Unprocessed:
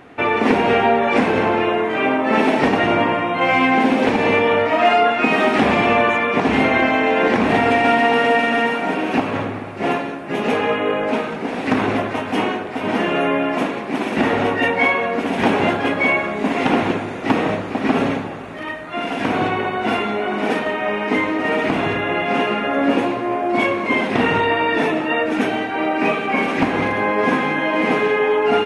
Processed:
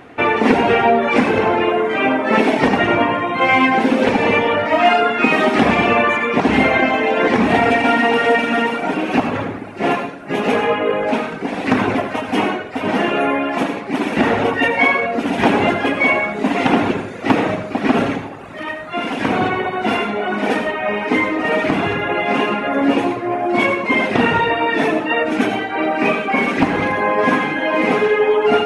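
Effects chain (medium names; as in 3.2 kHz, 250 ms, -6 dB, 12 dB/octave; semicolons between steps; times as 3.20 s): reverb removal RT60 1 s; reverberation RT60 0.40 s, pre-delay 69 ms, DRR 6.5 dB; trim +3 dB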